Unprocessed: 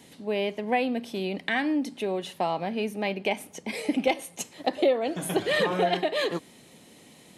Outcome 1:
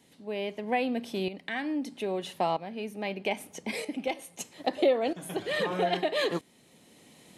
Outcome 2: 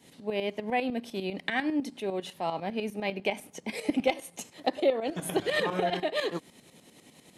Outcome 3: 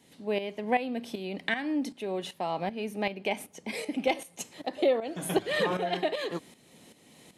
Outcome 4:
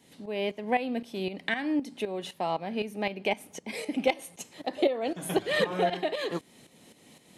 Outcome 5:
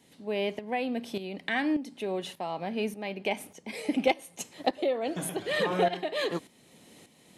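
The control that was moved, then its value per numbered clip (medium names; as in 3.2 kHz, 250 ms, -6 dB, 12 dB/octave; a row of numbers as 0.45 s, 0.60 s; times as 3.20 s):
tremolo, rate: 0.78 Hz, 10 Hz, 2.6 Hz, 3.9 Hz, 1.7 Hz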